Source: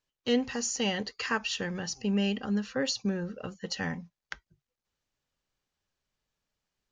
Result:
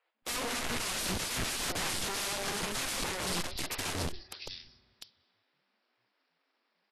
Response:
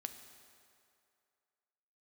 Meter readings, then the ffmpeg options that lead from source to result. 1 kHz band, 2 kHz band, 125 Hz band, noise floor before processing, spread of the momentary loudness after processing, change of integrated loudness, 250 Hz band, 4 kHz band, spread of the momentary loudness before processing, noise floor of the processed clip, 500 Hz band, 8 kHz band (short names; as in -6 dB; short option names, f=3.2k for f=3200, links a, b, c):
+1.5 dB, -1.0 dB, -4.5 dB, under -85 dBFS, 12 LU, -2.5 dB, -11.0 dB, +0.5 dB, 13 LU, -80 dBFS, -6.5 dB, +3.0 dB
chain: -filter_complex "[0:a]acrossover=split=2900[a][b];[b]acompressor=threshold=-49dB:ratio=4:attack=1:release=60[c];[a][c]amix=inputs=2:normalize=0,highshelf=f=3.4k:g=9,aexciter=amount=4.5:drive=7.2:freq=3.9k,aresample=11025,aeval=exprs='abs(val(0))':c=same,aresample=44100,acrossover=split=330|3600[d][e][f];[d]adelay=150[g];[f]adelay=700[h];[g][e][h]amix=inputs=3:normalize=0,asplit=2[i][j];[1:a]atrim=start_sample=2205[k];[j][k]afir=irnorm=-1:irlink=0,volume=-5dB[l];[i][l]amix=inputs=2:normalize=0,aeval=exprs='(mod(31.6*val(0)+1,2)-1)/31.6':c=same" -ar 32000 -c:a libvorbis -b:a 32k